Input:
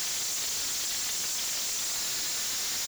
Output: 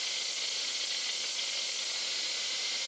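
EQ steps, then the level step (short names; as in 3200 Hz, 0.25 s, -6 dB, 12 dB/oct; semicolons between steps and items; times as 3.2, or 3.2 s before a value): speaker cabinet 240–6600 Hz, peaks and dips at 530 Hz +9 dB, 2100 Hz +10 dB, 3100 Hz +9 dB, 4300 Hz +7 dB; notch 1800 Hz, Q 6.7; -5.0 dB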